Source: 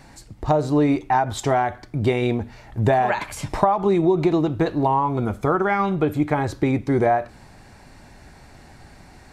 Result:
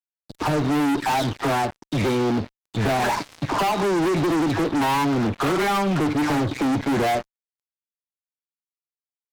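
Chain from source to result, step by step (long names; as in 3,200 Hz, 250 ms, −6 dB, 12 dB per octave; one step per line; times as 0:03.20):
every frequency bin delayed by itself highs early, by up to 335 ms
loudspeaker in its box 110–5,600 Hz, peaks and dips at 280 Hz +6 dB, 530 Hz −4 dB, 1,900 Hz −4 dB, 2,800 Hz −7 dB
fuzz pedal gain 30 dB, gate −37 dBFS
level −6 dB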